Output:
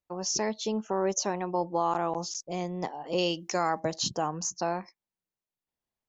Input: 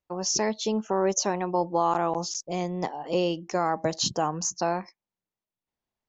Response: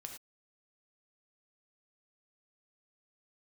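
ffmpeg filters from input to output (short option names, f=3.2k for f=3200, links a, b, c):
-filter_complex "[0:a]asettb=1/sr,asplit=3[a][b][c];[a]atrim=end=3.184[d];[b]atrim=start=3.18:end=3.8,asetpts=PTS-STARTPTS,afade=t=in:d=0.004:c=qsin,afade=t=out:st=0.616:d=0.004:c=qsin,highshelf=f=2.1k:g=11.5[e];[c]atrim=start=3.796[f];[d][e]acrossfade=d=0.004:c1=hsin:c2=qsin[g];[g][f]acrossfade=d=0.004:c1=qsin:c2=hsin,volume=-3.5dB"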